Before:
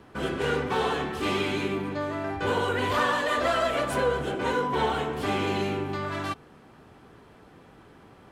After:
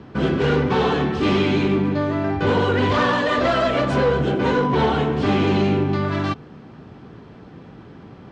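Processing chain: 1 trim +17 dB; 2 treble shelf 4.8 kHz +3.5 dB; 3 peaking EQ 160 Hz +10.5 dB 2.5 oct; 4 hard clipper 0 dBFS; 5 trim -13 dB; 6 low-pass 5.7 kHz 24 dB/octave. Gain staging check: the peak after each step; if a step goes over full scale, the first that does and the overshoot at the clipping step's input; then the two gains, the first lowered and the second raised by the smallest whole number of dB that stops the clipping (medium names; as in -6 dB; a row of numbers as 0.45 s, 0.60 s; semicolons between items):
+3.5 dBFS, +3.5 dBFS, +7.5 dBFS, 0.0 dBFS, -13.0 dBFS, -12.0 dBFS; step 1, 7.5 dB; step 1 +9 dB, step 5 -5 dB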